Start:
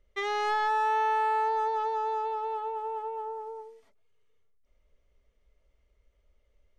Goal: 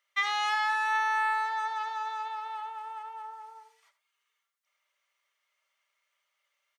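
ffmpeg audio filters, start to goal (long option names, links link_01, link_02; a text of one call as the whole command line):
ffmpeg -i in.wav -af "highpass=frequency=1000:width=0.5412,highpass=frequency=1000:width=1.3066,aecho=1:1:5.1:0.39,aecho=1:1:78:0.224,volume=5dB" out.wav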